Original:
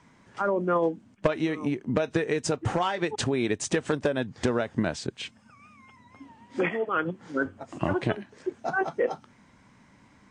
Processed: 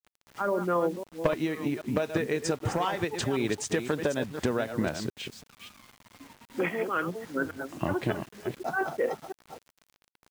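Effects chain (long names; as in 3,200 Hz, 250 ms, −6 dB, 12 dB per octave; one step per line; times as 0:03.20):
delay that plays each chunk backwards 259 ms, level −8.5 dB
bit-depth reduction 8 bits, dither none
level −2.5 dB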